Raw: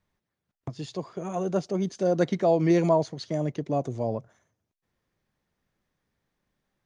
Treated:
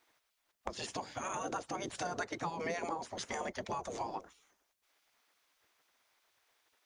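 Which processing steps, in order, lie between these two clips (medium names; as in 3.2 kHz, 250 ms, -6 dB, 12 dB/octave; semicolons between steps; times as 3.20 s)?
spectral gate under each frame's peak -15 dB weak; dynamic bell 3.6 kHz, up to -7 dB, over -54 dBFS, Q 0.75; compression 6:1, threshold -46 dBFS, peak gain reduction 12.5 dB; trim +11 dB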